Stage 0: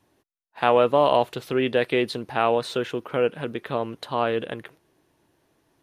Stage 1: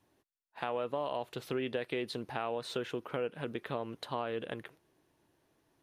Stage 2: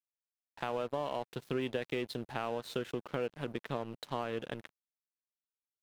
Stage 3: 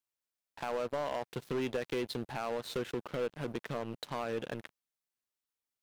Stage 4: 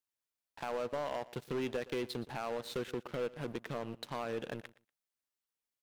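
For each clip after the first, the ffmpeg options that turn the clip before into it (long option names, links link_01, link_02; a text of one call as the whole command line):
ffmpeg -i in.wav -af "alimiter=limit=-11dB:level=0:latency=1:release=279,acompressor=threshold=-25dB:ratio=4,volume=-6.5dB" out.wav
ffmpeg -i in.wav -af "highshelf=frequency=10000:gain=3.5,aeval=exprs='sgn(val(0))*max(abs(val(0))-0.00398,0)':channel_layout=same,equalizer=frequency=160:width_type=o:width=1.5:gain=4.5" out.wav
ffmpeg -i in.wav -af "volume=31.5dB,asoftclip=hard,volume=-31.5dB,volume=3dB" out.wav
ffmpeg -i in.wav -af "aecho=1:1:119|238:0.112|0.0191,volume=-2dB" out.wav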